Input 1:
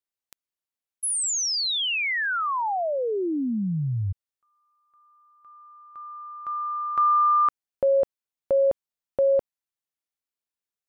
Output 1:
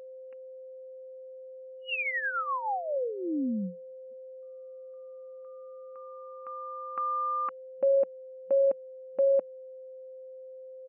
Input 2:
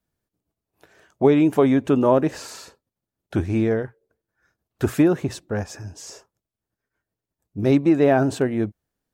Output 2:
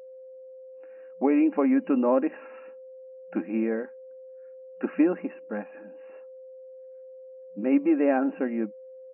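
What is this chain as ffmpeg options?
-af "aecho=1:1:3.7:0.47,afftfilt=real='re*between(b*sr/4096,180,2900)':imag='im*between(b*sr/4096,180,2900)':win_size=4096:overlap=0.75,aeval=exprs='val(0)+0.0158*sin(2*PI*520*n/s)':c=same,volume=-6.5dB"

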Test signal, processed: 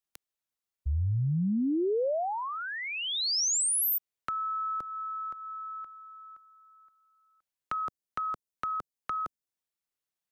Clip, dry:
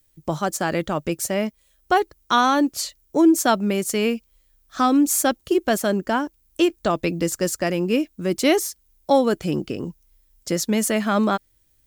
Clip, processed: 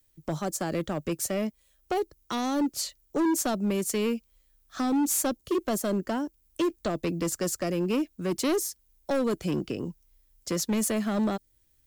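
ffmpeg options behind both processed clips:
-filter_complex "[0:a]acrossover=split=160|660|4200[a][b][c][d];[c]acompressor=threshold=-33dB:ratio=6[e];[a][b][e][d]amix=inputs=4:normalize=0,volume=18dB,asoftclip=hard,volume=-18dB,volume=-4dB"

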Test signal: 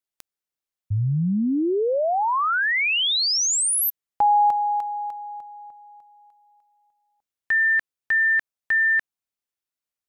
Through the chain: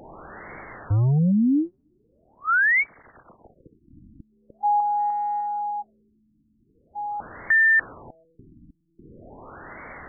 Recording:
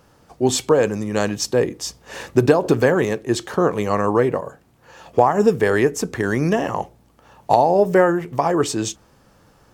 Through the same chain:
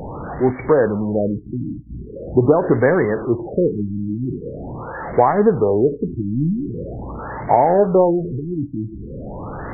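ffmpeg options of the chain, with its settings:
-af "aeval=exprs='val(0)+0.5*0.075*sgn(val(0))':c=same,afftfilt=real='re*lt(b*sr/1024,310*pow(2300/310,0.5+0.5*sin(2*PI*0.43*pts/sr)))':imag='im*lt(b*sr/1024,310*pow(2300/310,0.5+0.5*sin(2*PI*0.43*pts/sr)))':win_size=1024:overlap=0.75"

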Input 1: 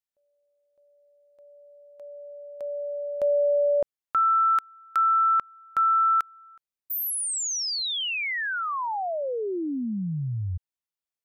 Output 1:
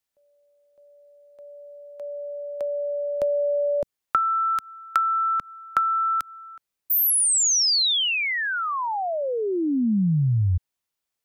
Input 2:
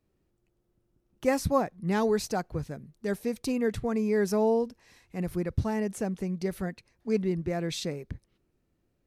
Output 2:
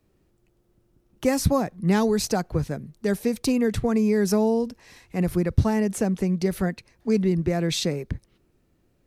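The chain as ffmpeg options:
-filter_complex "[0:a]acrossover=split=250|3700[a][b][c];[b]acompressor=threshold=-39dB:ratio=2.5:attack=83:release=151:knee=2.83:detection=peak[d];[a][d][c]amix=inputs=3:normalize=0,volume=8.5dB"

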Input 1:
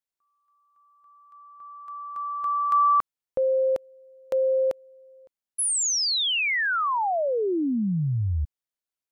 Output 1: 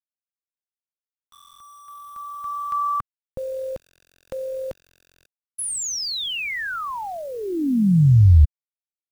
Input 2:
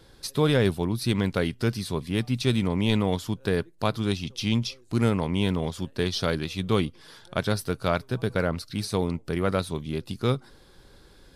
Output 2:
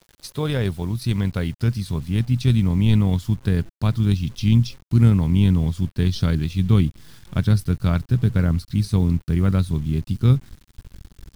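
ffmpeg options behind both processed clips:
-af "tremolo=f=44:d=0.261,acrusher=bits=7:mix=0:aa=0.000001,asubboost=boost=8.5:cutoff=180,volume=-1.5dB"

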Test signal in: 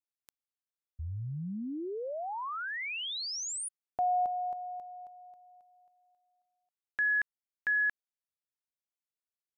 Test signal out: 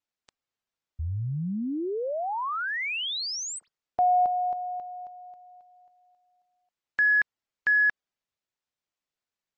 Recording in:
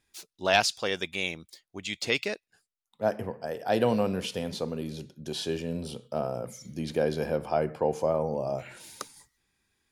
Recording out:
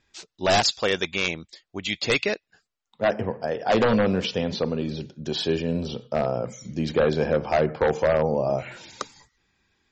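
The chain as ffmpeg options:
-af "aeval=exprs='0.106*(abs(mod(val(0)/0.106+3,4)-2)-1)':c=same,adynamicsmooth=sensitivity=2.5:basefreq=7.2k,volume=7.5dB" -ar 44100 -c:a libmp3lame -b:a 32k

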